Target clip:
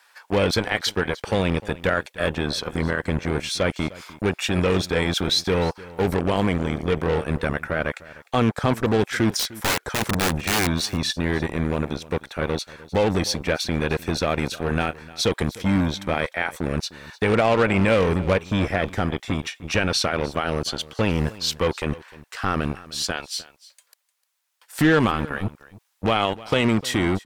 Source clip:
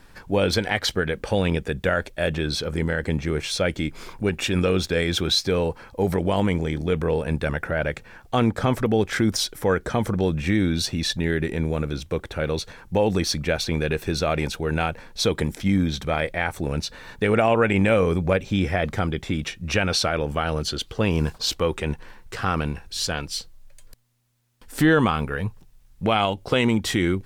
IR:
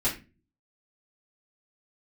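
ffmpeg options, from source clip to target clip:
-filter_complex "[0:a]acrossover=split=680[a][b];[a]acrusher=bits=3:mix=0:aa=0.5[c];[c][b]amix=inputs=2:normalize=0,asettb=1/sr,asplit=3[d][e][f];[d]atrim=end=9.394[g];[e]atrim=start=9.39:end=10.67,asetpts=PTS-STARTPTS,afade=t=in:d=0.004:c=qsin,afade=t=out:st=1.276:d=0.004:c=qsin,aeval=exprs='(mod(6.31*val(0)+1,2)-1)/6.31':c=same[h];[f]atrim=start=10.666[i];[g][h]acrossfade=d=0.004:c1=hsin:c2=qsin[j];[j][i]acrossfade=d=0.004:c1=qsin:c2=hsin,asplit=3[k][l][m];[k]afade=t=out:st=14.51:d=0.02[n];[l]asplit=2[o][p];[p]adelay=37,volume=-13dB[q];[o][q]amix=inputs=2:normalize=0,afade=t=in:st=14.51:d=0.02,afade=t=out:st=14.92:d=0.02[r];[m]afade=t=in:st=14.92:d=0.02[s];[n][r][s]amix=inputs=3:normalize=0,aecho=1:1:303:0.106"

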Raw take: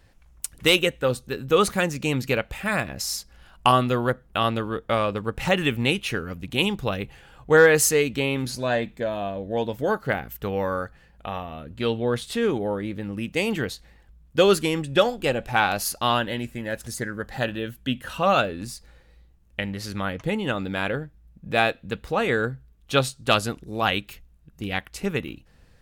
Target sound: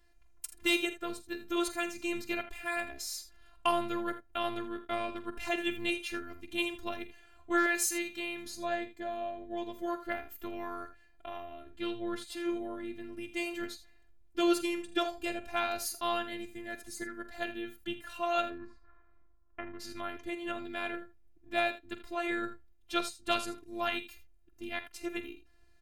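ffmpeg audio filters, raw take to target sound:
-filter_complex "[0:a]asettb=1/sr,asplit=3[a][b][c];[a]atrim=end=7.664[d];[b]atrim=start=7.66:end=8.46,asetpts=PTS-STARTPTS,afade=t=in:d=0.004:c=qsin,afade=t=out:st=0.796:d=0.004:c=qsin,lowshelf=f=410:g=-9[e];[c]atrim=start=8.456[f];[d][e]acrossfade=d=0.004:c1=hsin:c2=qsin[g];[g][f]acrossfade=d=0.004:c1=qsin:c2=hsin,asettb=1/sr,asplit=3[h][i][j];[h]atrim=end=18.504[k];[i]atrim=start=18.5:end=19.8,asetpts=PTS-STARTPTS,afade=t=in:d=0.004:c=qsin,afade=t=out:st=1.296:d=0.004:c=qsin,lowpass=f=1.2k:t=q:w=7.6[l];[j]atrim=start=19.796[m];[k][l]acrossfade=d=0.004:c1=hsin:c2=qsin[n];[n][m]acrossfade=d=0.004:c1=qsin:c2=hsin,afftfilt=real='hypot(re,im)*cos(PI*b)':imag='0':win_size=512:overlap=0.75,aecho=1:1:46|80:0.224|0.2,volume=-6.5dB"

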